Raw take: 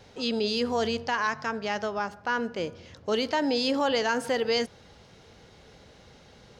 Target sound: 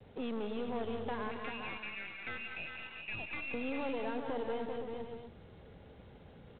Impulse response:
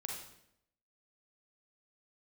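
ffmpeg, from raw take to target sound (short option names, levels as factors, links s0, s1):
-filter_complex "[0:a]adynamicequalizer=threshold=0.00708:dfrequency=2000:dqfactor=0.78:tfrequency=2000:tqfactor=0.78:attack=5:release=100:ratio=0.375:range=4:mode=cutabove:tftype=bell,asettb=1/sr,asplit=3[s0][s1][s2];[s0]atrim=end=1.314[s3];[s1]atrim=start=1.31:end=3.54,asetpts=PTS-STARTPTS,afade=t=in:d=0.004:c=qsin,afade=t=out:st=2.226:d=0.004:c=qsin,lowpass=f=2600:t=q:w=0.5098,lowpass=f=2600:t=q:w=0.6013,lowpass=f=2600:t=q:w=0.9,lowpass=f=2600:t=q:w=2.563,afreqshift=-3000[s4];[s2]atrim=start=3.536[s5];[s3][s4]acrossfade=d=0.004:c1=hsin:c2=qsin[s6];[s6][s5]acrossfade=d=0.004:c1=qsin:c2=hsin,tiltshelf=f=850:g=5.5,alimiter=limit=0.1:level=0:latency=1:release=171,aeval=exprs='(tanh(17.8*val(0)+0.6)-tanh(0.6))/17.8':c=same,aecho=1:1:179|190|223|391|517|639:0.316|0.133|0.141|0.355|0.2|0.158,acrossover=split=88|630[s7][s8][s9];[s7]acompressor=threshold=0.00794:ratio=4[s10];[s8]acompressor=threshold=0.0178:ratio=4[s11];[s9]acompressor=threshold=0.0141:ratio=4[s12];[s10][s11][s12]amix=inputs=3:normalize=0,volume=0.708" -ar 8000 -c:a adpcm_g726 -b:a 24k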